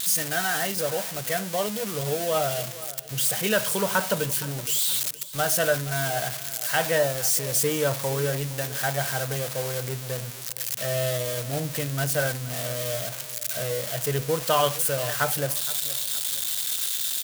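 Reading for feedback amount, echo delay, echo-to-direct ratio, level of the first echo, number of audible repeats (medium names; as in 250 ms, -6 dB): 37%, 468 ms, -17.0 dB, -17.5 dB, 3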